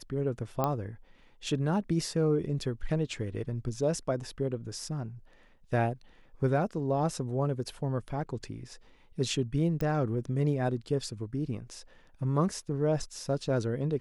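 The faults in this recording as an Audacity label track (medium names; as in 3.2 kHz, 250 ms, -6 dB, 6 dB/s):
0.640000	0.640000	pop -15 dBFS
9.810000	9.810000	pop -21 dBFS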